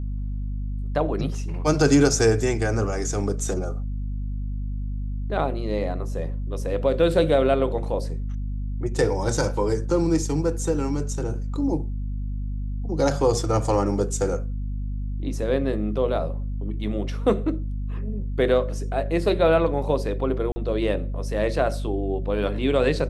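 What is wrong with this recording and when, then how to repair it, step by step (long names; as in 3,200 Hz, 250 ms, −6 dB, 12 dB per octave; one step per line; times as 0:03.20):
mains hum 50 Hz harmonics 5 −28 dBFS
0:20.52–0:20.56: drop-out 40 ms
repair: hum removal 50 Hz, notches 5
repair the gap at 0:20.52, 40 ms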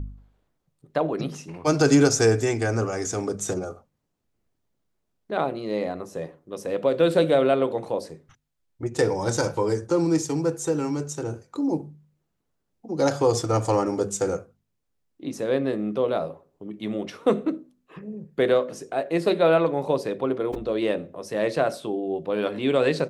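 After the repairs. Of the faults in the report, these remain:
none of them is left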